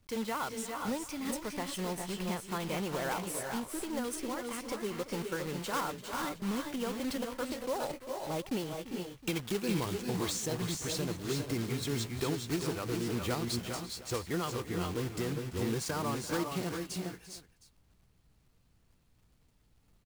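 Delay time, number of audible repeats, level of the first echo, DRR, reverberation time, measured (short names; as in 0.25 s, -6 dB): 0.341 s, 3, -16.0 dB, none, none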